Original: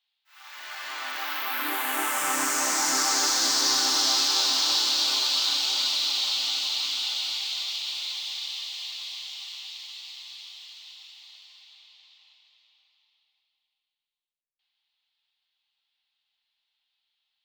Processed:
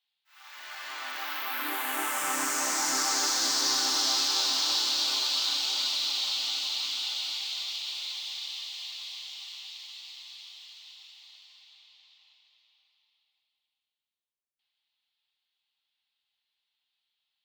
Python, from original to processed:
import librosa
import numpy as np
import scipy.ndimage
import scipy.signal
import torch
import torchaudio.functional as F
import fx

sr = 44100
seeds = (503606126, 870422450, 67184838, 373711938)

y = scipy.signal.sosfilt(scipy.signal.butter(2, 49.0, 'highpass', fs=sr, output='sos'), x)
y = F.gain(torch.from_numpy(y), -3.5).numpy()